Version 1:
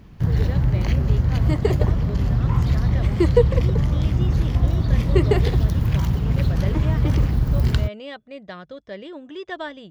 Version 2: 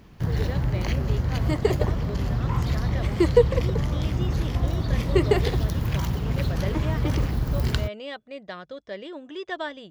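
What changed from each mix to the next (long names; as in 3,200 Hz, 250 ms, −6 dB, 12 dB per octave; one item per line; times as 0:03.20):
master: add bass and treble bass −6 dB, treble +2 dB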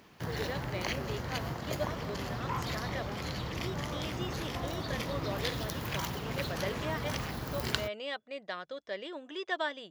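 second sound: muted
master: add high-pass filter 560 Hz 6 dB per octave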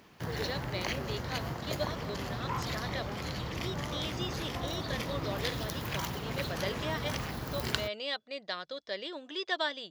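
speech: add parametric band 4,400 Hz +11.5 dB 0.77 octaves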